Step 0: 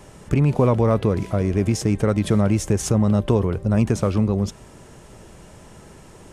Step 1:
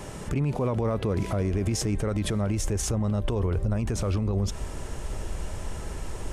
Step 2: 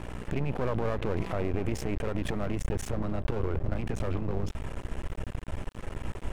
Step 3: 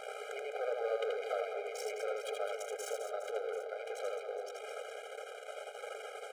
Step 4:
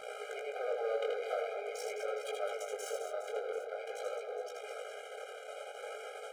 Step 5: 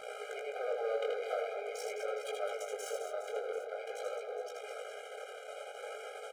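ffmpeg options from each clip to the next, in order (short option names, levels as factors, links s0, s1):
-af "asubboost=boost=6:cutoff=64,acompressor=threshold=0.0708:ratio=2.5,alimiter=level_in=1.12:limit=0.0631:level=0:latency=1:release=92,volume=0.891,volume=2"
-af "highshelf=f=3600:t=q:w=1.5:g=-8.5,aeval=exprs='val(0)+0.0141*(sin(2*PI*60*n/s)+sin(2*PI*2*60*n/s)/2+sin(2*PI*3*60*n/s)/3+sin(2*PI*4*60*n/s)/4+sin(2*PI*5*60*n/s)/5)':c=same,aeval=exprs='max(val(0),0)':c=same"
-filter_complex "[0:a]acompressor=threshold=0.0282:ratio=6,asplit=2[s0][s1];[s1]aecho=0:1:80|208|412.8|740.5|1265:0.631|0.398|0.251|0.158|0.1[s2];[s0][s2]amix=inputs=2:normalize=0,afftfilt=real='re*eq(mod(floor(b*sr/1024/410),2),1)':imag='im*eq(mod(floor(b*sr/1024/410),2),1)':win_size=1024:overlap=0.75,volume=1.58"
-af "flanger=delay=16:depth=7.2:speed=0.45,volume=1.41"
-af "aecho=1:1:493:0.0668"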